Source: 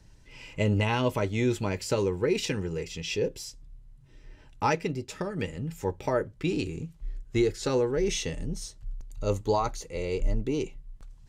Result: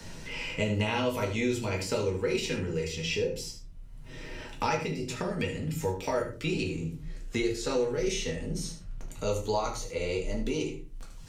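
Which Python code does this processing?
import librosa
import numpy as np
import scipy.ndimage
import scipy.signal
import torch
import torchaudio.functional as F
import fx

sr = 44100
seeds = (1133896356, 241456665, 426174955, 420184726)

p1 = fx.tilt_shelf(x, sr, db=-3.5, hz=1200.0)
p2 = p1 + fx.echo_single(p1, sr, ms=75, db=-12.0, dry=0)
p3 = fx.room_shoebox(p2, sr, seeds[0], volume_m3=140.0, walls='furnished', distance_m=1.7)
p4 = fx.band_squash(p3, sr, depth_pct=70)
y = p4 * librosa.db_to_amplitude(-5.0)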